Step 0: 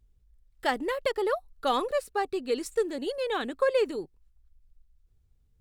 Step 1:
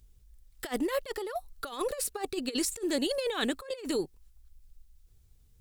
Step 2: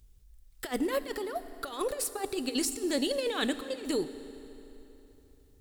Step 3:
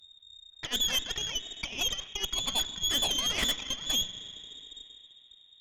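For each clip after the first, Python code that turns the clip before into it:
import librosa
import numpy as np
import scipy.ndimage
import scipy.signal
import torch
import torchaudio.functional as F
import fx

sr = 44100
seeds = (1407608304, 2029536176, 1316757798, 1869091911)

y1 = fx.high_shelf(x, sr, hz=3400.0, db=11.5)
y1 = fx.over_compress(y1, sr, threshold_db=-31.0, ratio=-0.5)
y2 = fx.rev_fdn(y1, sr, rt60_s=3.4, lf_ratio=1.0, hf_ratio=0.85, size_ms=22.0, drr_db=11.5)
y3 = fx.freq_invert(y2, sr, carrier_hz=3700)
y3 = fx.cheby_harmonics(y3, sr, harmonics=(8,), levels_db=(-15,), full_scale_db=-16.0)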